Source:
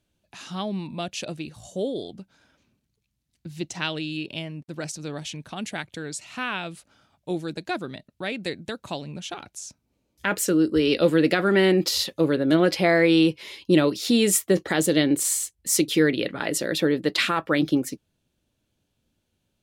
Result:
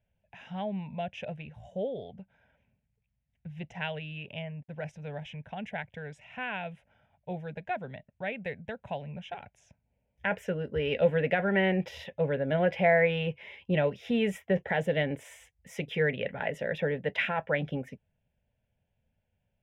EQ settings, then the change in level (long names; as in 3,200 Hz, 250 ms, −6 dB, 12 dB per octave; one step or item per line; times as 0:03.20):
high-frequency loss of the air 310 metres
phaser with its sweep stopped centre 1,200 Hz, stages 6
0.0 dB